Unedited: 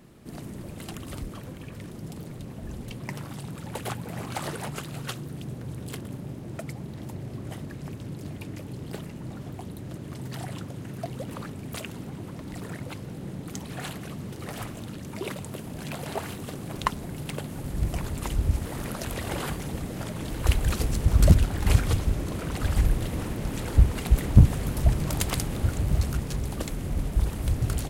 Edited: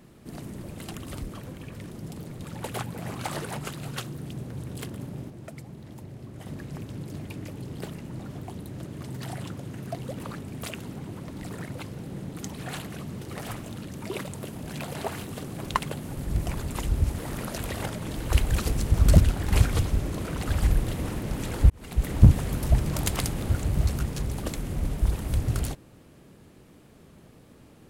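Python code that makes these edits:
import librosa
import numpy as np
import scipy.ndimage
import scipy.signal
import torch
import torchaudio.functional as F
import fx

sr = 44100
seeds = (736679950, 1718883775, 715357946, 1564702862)

y = fx.edit(x, sr, fx.cut(start_s=2.42, length_s=1.11),
    fx.clip_gain(start_s=6.41, length_s=1.16, db=-5.5),
    fx.cut(start_s=16.9, length_s=0.36),
    fx.cut(start_s=19.33, length_s=0.67),
    fx.fade_in_span(start_s=23.84, length_s=0.49), tone=tone)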